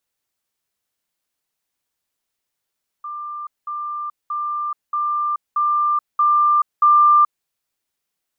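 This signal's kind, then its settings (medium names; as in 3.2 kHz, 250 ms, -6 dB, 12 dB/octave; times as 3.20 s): level ladder 1.19 kHz -27 dBFS, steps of 3 dB, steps 7, 0.43 s 0.20 s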